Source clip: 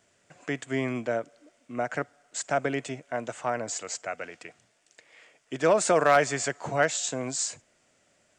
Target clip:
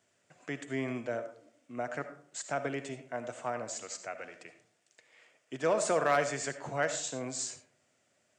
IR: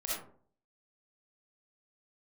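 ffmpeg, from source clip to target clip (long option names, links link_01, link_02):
-filter_complex "[0:a]highpass=75,asplit=2[link_01][link_02];[1:a]atrim=start_sample=2205,asetrate=41454,aresample=44100,adelay=8[link_03];[link_02][link_03]afir=irnorm=-1:irlink=0,volume=-12.5dB[link_04];[link_01][link_04]amix=inputs=2:normalize=0,volume=-7dB"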